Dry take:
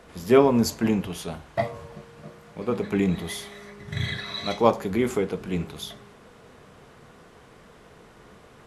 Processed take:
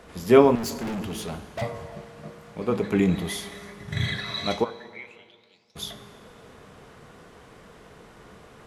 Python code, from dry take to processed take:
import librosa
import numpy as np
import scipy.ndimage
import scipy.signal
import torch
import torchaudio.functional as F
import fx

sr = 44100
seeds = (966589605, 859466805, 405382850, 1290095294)

y = fx.bandpass_q(x, sr, hz=fx.line((4.63, 1400.0), (5.75, 5700.0)), q=13.0, at=(4.63, 5.75), fade=0.02)
y = fx.rev_plate(y, sr, seeds[0], rt60_s=2.1, hf_ratio=0.9, predelay_ms=0, drr_db=14.0)
y = fx.overload_stage(y, sr, gain_db=30.0, at=(0.55, 1.62))
y = y * librosa.db_to_amplitude(1.5)